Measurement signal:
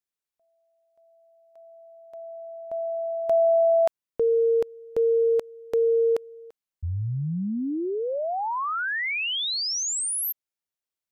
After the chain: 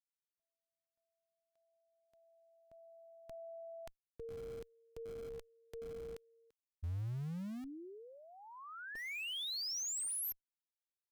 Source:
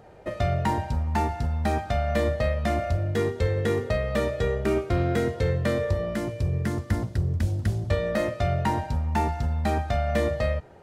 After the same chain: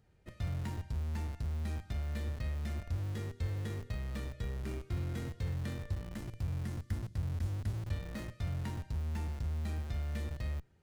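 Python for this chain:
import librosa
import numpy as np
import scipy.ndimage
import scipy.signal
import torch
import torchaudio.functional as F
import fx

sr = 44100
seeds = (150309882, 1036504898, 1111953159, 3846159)

p1 = fx.tone_stack(x, sr, knobs='6-0-2')
p2 = fx.schmitt(p1, sr, flips_db=-44.5)
p3 = p1 + F.gain(torch.from_numpy(p2), -6.0).numpy()
y = F.gain(torch.from_numpy(p3), 1.0).numpy()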